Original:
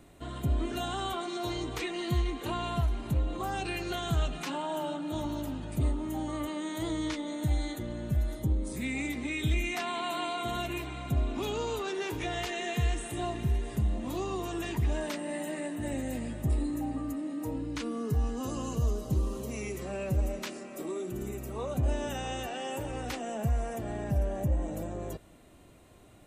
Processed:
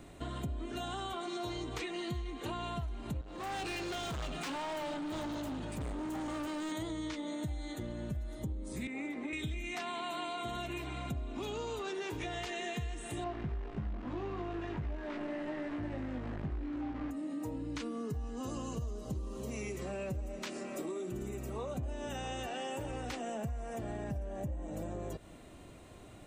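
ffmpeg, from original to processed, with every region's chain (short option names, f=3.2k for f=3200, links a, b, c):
-filter_complex "[0:a]asettb=1/sr,asplit=3[a][b][c];[a]atrim=end=3.214[d];[b]atrim=start=3.21:end=6.72,asetpts=PTS-STARTPTS,afade=t=in:d=0.004:c=qsin,afade=t=out:st=3.506:d=0.004:c=qsin,lowshelf=f=140:g=-6.5,asoftclip=type=hard:threshold=-38dB[e];[c]atrim=start=6.716[f];[d][e]acrossfade=d=0.004:c1=hsin:c2=qsin[g];[g][f]acrossfade=d=0.004:c1=qsin:c2=hsin,asettb=1/sr,asplit=3[h][i][j];[h]atrim=end=8.874[k];[i]atrim=start=8.87:end=9.33,asetpts=PTS-STARTPTS,afade=t=in:d=0.004:c=qsin,afade=t=out:st=0.456:d=0.004:c=qsin,highpass=f=110:p=1,acrossover=split=210 2000:gain=0.0891 1 0.2[l][m][n];[l][m][n]amix=inputs=3:normalize=0[o];[j]atrim=start=9.326[p];[k][o]acrossfade=d=0.004:c1=hsin:c2=qsin[q];[q][p]acrossfade=d=0.004:c1=qsin:c2=hsin,asettb=1/sr,asplit=3[r][s][t];[r]atrim=end=13.244[u];[s]atrim=start=13.24:end=17.11,asetpts=PTS-STARTPTS,afade=t=in:d=0.004:c=qsin,afade=t=out:st=3.866:d=0.004:c=qsin,acrusher=bits=7:dc=4:mix=0:aa=0.000001,lowpass=2k,asplit=2[v][w];[w]adelay=20,volume=-3dB[x];[v][x]amix=inputs=2:normalize=0,atrim=end_sample=170667[y];[t]atrim=start=17.106[z];[u][y]acrossfade=d=0.004:c1=hsin:c2=qsin[aa];[aa][z]acrossfade=d=0.004:c1=qsin:c2=hsin,equalizer=f=12k:w=2.9:g=-13.5,acompressor=threshold=-40dB:ratio=6,volume=3.5dB"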